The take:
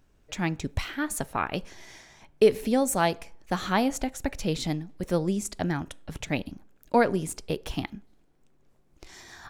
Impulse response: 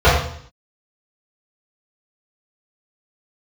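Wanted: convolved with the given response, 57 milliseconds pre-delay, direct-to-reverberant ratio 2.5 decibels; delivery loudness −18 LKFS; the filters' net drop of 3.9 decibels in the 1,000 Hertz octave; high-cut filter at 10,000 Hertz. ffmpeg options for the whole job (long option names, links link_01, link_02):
-filter_complex "[0:a]lowpass=10000,equalizer=frequency=1000:width_type=o:gain=-5.5,asplit=2[link_01][link_02];[1:a]atrim=start_sample=2205,adelay=57[link_03];[link_02][link_03]afir=irnorm=-1:irlink=0,volume=-30.5dB[link_04];[link_01][link_04]amix=inputs=2:normalize=0,volume=8dB"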